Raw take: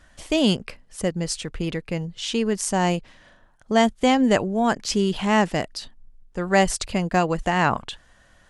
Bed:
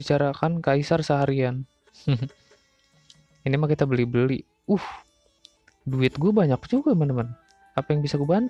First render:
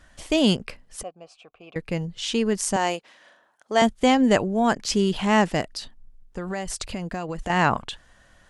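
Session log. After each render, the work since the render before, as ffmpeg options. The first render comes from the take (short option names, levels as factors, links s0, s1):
-filter_complex "[0:a]asettb=1/sr,asplit=3[s0][s1][s2];[s0]atrim=end=1.034[s3];[s1]atrim=start=1.03:end=1.76,asetpts=PTS-STARTPTS,afade=t=in:d=0.004:c=qsin,afade=t=out:st=0.726:d=0.004:c=qsin,asplit=3[s4][s5][s6];[s4]bandpass=f=730:t=q:w=8,volume=1[s7];[s5]bandpass=f=1090:t=q:w=8,volume=0.501[s8];[s6]bandpass=f=2440:t=q:w=8,volume=0.355[s9];[s7][s8][s9]amix=inputs=3:normalize=0[s10];[s2]atrim=start=1.756[s11];[s3][s10]acrossfade=d=0.004:c1=hsin:c2=qsin[s12];[s12][s11]acrossfade=d=0.004:c1=qsin:c2=hsin,asettb=1/sr,asplit=3[s13][s14][s15];[s13]atrim=end=2.764[s16];[s14]atrim=start=2.76:end=3.82,asetpts=PTS-STARTPTS,afade=t=in:d=0.004:c=qsin,afade=t=out:st=1.056:d=0.004:c=qsin,highpass=410[s17];[s15]atrim=start=3.816[s18];[s16][s17]acrossfade=d=0.004:c1=hsin:c2=qsin[s19];[s19][s18]acrossfade=d=0.004:c1=qsin:c2=hsin,asettb=1/sr,asplit=3[s20][s21][s22];[s20]atrim=end=5.614[s23];[s21]atrim=start=5.61:end=7.5,asetpts=PTS-STARTPTS,afade=t=in:d=0.004:c=qsin,afade=t=out:st=1.886:d=0.004:c=qsin,acompressor=threshold=0.0501:ratio=6:attack=3.2:release=140:knee=1:detection=peak[s24];[s22]atrim=start=7.496[s25];[s23][s24]acrossfade=d=0.004:c1=hsin:c2=qsin[s26];[s26][s25]acrossfade=d=0.004:c1=qsin:c2=hsin"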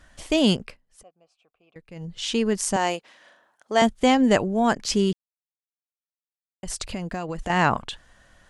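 -filter_complex "[0:a]asplit=5[s0][s1][s2][s3][s4];[s0]atrim=end=0.78,asetpts=PTS-STARTPTS,afade=t=out:st=0.6:d=0.18:silence=0.16788[s5];[s1]atrim=start=0.78:end=1.95,asetpts=PTS-STARTPTS,volume=0.168[s6];[s2]atrim=start=1.95:end=5.13,asetpts=PTS-STARTPTS,afade=t=in:d=0.18:silence=0.16788,afade=t=out:st=3.176:d=0.004:c=hsin[s7];[s3]atrim=start=5.13:end=6.63,asetpts=PTS-STARTPTS,volume=0[s8];[s4]atrim=start=6.63,asetpts=PTS-STARTPTS,afade=t=in:d=0.004:c=hsin[s9];[s5][s6][s7][s8][s9]concat=n=5:v=0:a=1"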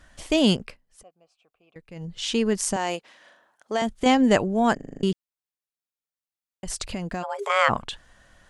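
-filter_complex "[0:a]asettb=1/sr,asplit=3[s0][s1][s2];[s0]atrim=end=2.734[s3];[s1]atrim=start=2.73:end=4.06,asetpts=PTS-STARTPTS,afade=t=in:d=0.004:c=qsin,afade=t=out:st=1.326:d=0.004:c=qsin,acompressor=threshold=0.1:ratio=4:attack=3.2:release=140:knee=1:detection=peak[s4];[s2]atrim=start=4.056[s5];[s3][s4]acrossfade=d=0.004:c1=hsin:c2=qsin[s6];[s6][s5]acrossfade=d=0.004:c1=qsin:c2=hsin,asplit=3[s7][s8][s9];[s7]afade=t=out:st=7.22:d=0.02[s10];[s8]afreqshift=380,afade=t=in:st=7.22:d=0.02,afade=t=out:st=7.68:d=0.02[s11];[s9]afade=t=in:st=7.68:d=0.02[s12];[s10][s11][s12]amix=inputs=3:normalize=0,asplit=8[s13][s14][s15][s16][s17][s18][s19][s20];[s13]atrim=end=4.792[s21];[s14]atrim=start=4.748:end=4.792[s22];[s15]atrim=start=4.748:end=4.792[s23];[s16]atrim=start=4.748:end=4.792[s24];[s17]atrim=start=4.748:end=4.792[s25];[s18]atrim=start=4.748:end=4.792[s26];[s19]atrim=start=4.748:end=4.792[s27];[s20]atrim=start=5.028[s28];[s21][s22]acrossfade=d=0.004:c1=hsin:c2=hsin[s29];[s29][s23]acrossfade=d=0.004:c1=hsin:c2=hsin[s30];[s30][s24]acrossfade=d=0.004:c1=hsin:c2=hsin[s31];[s31][s25]acrossfade=d=0.004:c1=hsin:c2=hsin[s32];[s32][s26]acrossfade=d=0.004:c1=hsin:c2=hsin[s33];[s33][s27]acrossfade=d=0.004:c1=hsin:c2=hsin[s34];[s34][s28]acrossfade=d=0.004:c1=hsin:c2=hsin"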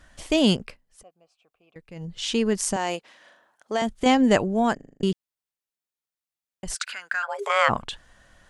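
-filter_complex "[0:a]asplit=3[s0][s1][s2];[s0]afade=t=out:st=6.74:d=0.02[s3];[s1]highpass=f=1500:t=q:w=11,afade=t=in:st=6.74:d=0.02,afade=t=out:st=7.27:d=0.02[s4];[s2]afade=t=in:st=7.27:d=0.02[s5];[s3][s4][s5]amix=inputs=3:normalize=0,asplit=2[s6][s7];[s6]atrim=end=5,asetpts=PTS-STARTPTS,afade=t=out:st=4.6:d=0.4[s8];[s7]atrim=start=5,asetpts=PTS-STARTPTS,afade=t=in:d=0.004:c=hsin[s9];[s8][s9]concat=n=2:v=0:a=1"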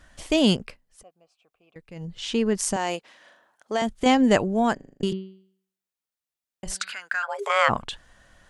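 -filter_complex "[0:a]asettb=1/sr,asplit=3[s0][s1][s2];[s0]atrim=end=2.174[s3];[s1]atrim=start=2.17:end=2.59,asetpts=PTS-STARTPTS,afade=t=in:d=0.004:c=qsin,afade=t=out:st=0.416:d=0.004:c=qsin,highshelf=f=3900:g=-7.5[s4];[s2]atrim=start=2.586[s5];[s3][s4]acrossfade=d=0.004:c1=hsin:c2=qsin[s6];[s6][s5]acrossfade=d=0.004:c1=qsin:c2=hsin,asettb=1/sr,asplit=3[s7][s8][s9];[s7]atrim=end=4.734[s10];[s8]atrim=start=4.73:end=6.94,asetpts=PTS-STARTPTS,afade=t=in:d=0.004:c=qsin,afade=t=out:st=2.206:d=0.004:c=qsin,bandreject=f=190.1:t=h:w=4,bandreject=f=380.2:t=h:w=4,bandreject=f=570.3:t=h:w=4,bandreject=f=760.4:t=h:w=4,bandreject=f=950.5:t=h:w=4,bandreject=f=1140.6:t=h:w=4,bandreject=f=1330.7:t=h:w=4,bandreject=f=1520.8:t=h:w=4,bandreject=f=1710.9:t=h:w=4,bandreject=f=1901:t=h:w=4,bandreject=f=2091.1:t=h:w=4,bandreject=f=2281.2:t=h:w=4,bandreject=f=2471.3:t=h:w=4,bandreject=f=2661.4:t=h:w=4,bandreject=f=2851.5:t=h:w=4,bandreject=f=3041.6:t=h:w=4,bandreject=f=3231.7:t=h:w=4,bandreject=f=3421.8:t=h:w=4,bandreject=f=3611.9:t=h:w=4,bandreject=f=3802:t=h:w=4,bandreject=f=3992.1:t=h:w=4,bandreject=f=4182.2:t=h:w=4,bandreject=f=4372.3:t=h:w=4,bandreject=f=4562.4:t=h:w=4,bandreject=f=4752.5:t=h:w=4[s11];[s9]atrim=start=6.936[s12];[s10][s11]acrossfade=d=0.004:c1=hsin:c2=qsin[s13];[s13][s12]acrossfade=d=0.004:c1=qsin:c2=hsin"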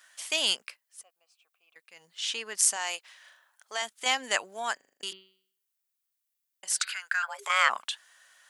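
-af "highpass=1300,highshelf=f=9000:g=11"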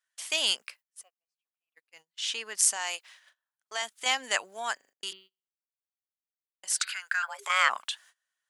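-af "agate=range=0.0501:threshold=0.00224:ratio=16:detection=peak,lowshelf=f=430:g=-5.5"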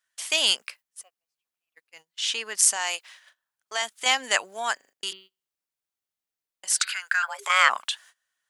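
-af "volume=1.78,alimiter=limit=0.708:level=0:latency=1"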